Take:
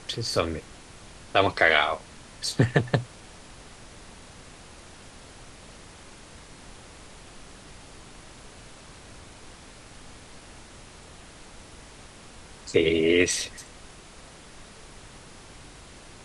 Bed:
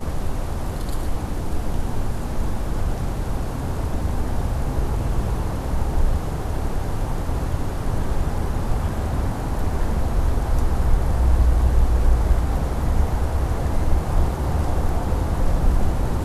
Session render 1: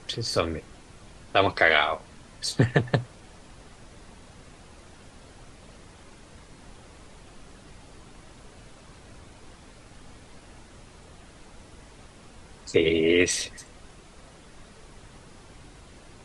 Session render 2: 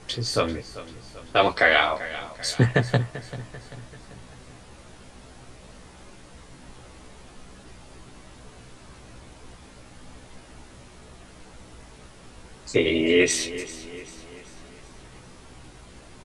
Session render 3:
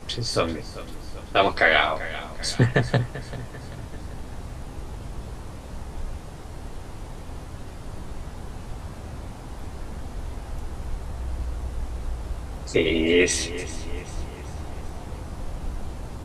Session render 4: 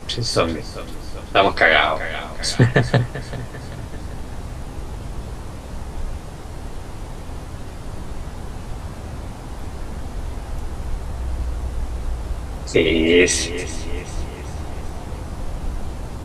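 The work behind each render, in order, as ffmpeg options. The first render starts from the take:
-af "afftdn=nr=6:nf=-48"
-filter_complex "[0:a]asplit=2[s0][s1];[s1]adelay=16,volume=0.75[s2];[s0][s2]amix=inputs=2:normalize=0,aecho=1:1:390|780|1170|1560|1950:0.168|0.0839|0.042|0.021|0.0105"
-filter_complex "[1:a]volume=0.211[s0];[0:a][s0]amix=inputs=2:normalize=0"
-af "volume=1.78,alimiter=limit=0.891:level=0:latency=1"

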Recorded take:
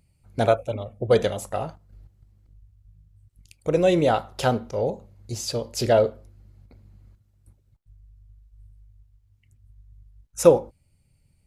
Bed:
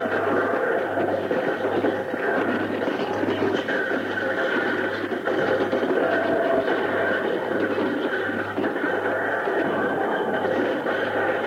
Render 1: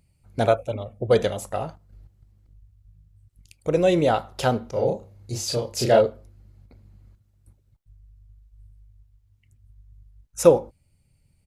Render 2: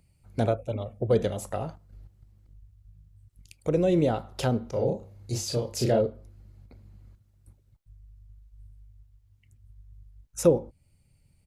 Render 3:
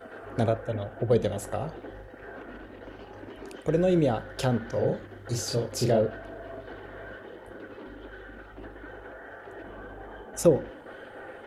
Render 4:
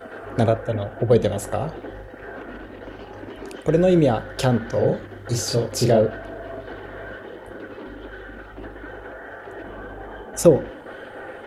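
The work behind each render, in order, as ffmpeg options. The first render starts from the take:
-filter_complex "[0:a]asplit=3[s0][s1][s2];[s0]afade=t=out:st=4.74:d=0.02[s3];[s1]asplit=2[s4][s5];[s5]adelay=32,volume=0.794[s6];[s4][s6]amix=inputs=2:normalize=0,afade=t=in:st=4.74:d=0.02,afade=t=out:st=6:d=0.02[s7];[s2]afade=t=in:st=6:d=0.02[s8];[s3][s7][s8]amix=inputs=3:normalize=0"
-filter_complex "[0:a]acrossover=split=430[s0][s1];[s1]acompressor=threshold=0.0224:ratio=3[s2];[s0][s2]amix=inputs=2:normalize=0"
-filter_complex "[1:a]volume=0.1[s0];[0:a][s0]amix=inputs=2:normalize=0"
-af "volume=2.11"

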